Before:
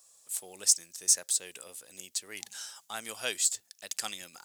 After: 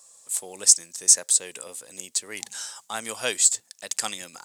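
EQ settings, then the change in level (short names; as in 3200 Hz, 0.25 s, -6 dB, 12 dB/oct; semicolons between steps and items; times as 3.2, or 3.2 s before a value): graphic EQ 125/250/500/1000/2000/4000/8000 Hz +10/+8/+8/+9/+6/+4/+11 dB; -2.5 dB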